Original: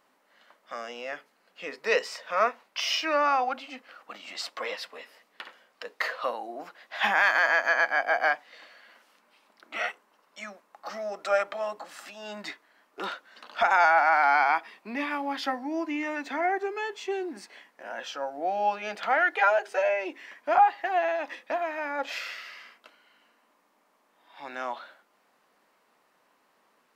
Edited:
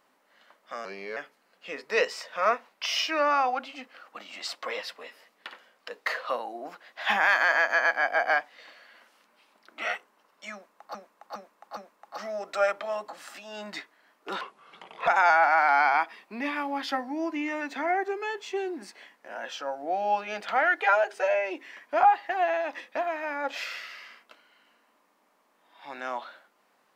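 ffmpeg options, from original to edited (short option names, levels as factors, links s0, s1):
-filter_complex "[0:a]asplit=8[s0][s1][s2][s3][s4][s5][s6][s7];[s0]atrim=end=0.854[s8];[s1]atrim=start=0.85:end=1.11,asetpts=PTS-STARTPTS,asetrate=36162,aresample=44100[s9];[s2]atrim=start=1.106:end=10.892[s10];[s3]atrim=start=10.478:end=10.892[s11];[s4]atrim=start=10.478:end=10.892[s12];[s5]atrim=start=10.478:end=13.124[s13];[s6]atrim=start=13.12:end=13.62,asetpts=PTS-STARTPTS,asetrate=33075,aresample=44100[s14];[s7]atrim=start=13.616[s15];[s8][s9]acrossfade=d=0.004:c1=hsin:c2=hsin[s16];[s16][s10]acrossfade=d=0.004:c1=hsin:c2=hsin[s17];[s17][s11]acrossfade=d=0.004:c1=hsin:c2=hsin[s18];[s18][s12]acrossfade=d=0.004:c1=hsin:c2=hsin[s19];[s19][s13]acrossfade=d=0.004:c1=hsin:c2=hsin[s20];[s20][s14]acrossfade=d=0.004:c1=hsin:c2=hsin[s21];[s21][s15]acrossfade=d=0.004:c1=hsin:c2=hsin"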